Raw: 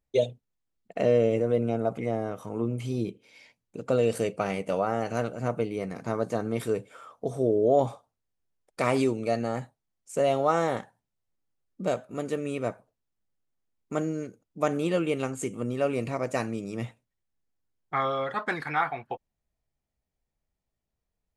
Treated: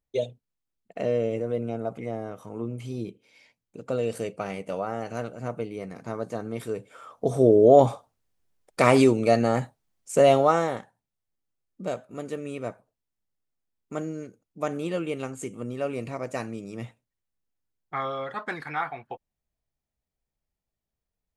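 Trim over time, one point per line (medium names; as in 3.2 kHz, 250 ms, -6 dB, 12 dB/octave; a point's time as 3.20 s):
6.75 s -3.5 dB
7.33 s +7 dB
10.34 s +7 dB
10.79 s -3 dB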